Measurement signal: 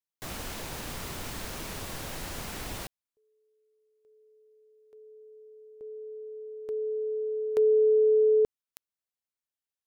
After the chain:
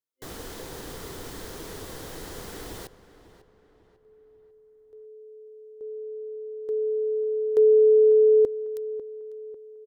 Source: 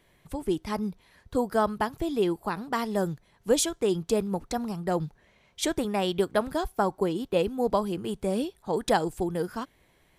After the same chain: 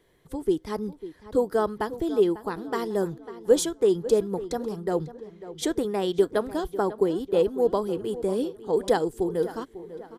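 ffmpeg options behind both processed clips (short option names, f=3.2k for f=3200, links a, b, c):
-filter_complex "[0:a]superequalizer=6b=1.78:7b=2.51:12b=0.562,asplit=2[a][b];[b]adelay=547,lowpass=f=2.8k:p=1,volume=-14.5dB,asplit=2[c][d];[d]adelay=547,lowpass=f=2.8k:p=1,volume=0.45,asplit=2[e][f];[f]adelay=547,lowpass=f=2.8k:p=1,volume=0.45,asplit=2[g][h];[h]adelay=547,lowpass=f=2.8k:p=1,volume=0.45[i];[c][e][g][i]amix=inputs=4:normalize=0[j];[a][j]amix=inputs=2:normalize=0,volume=-2.5dB"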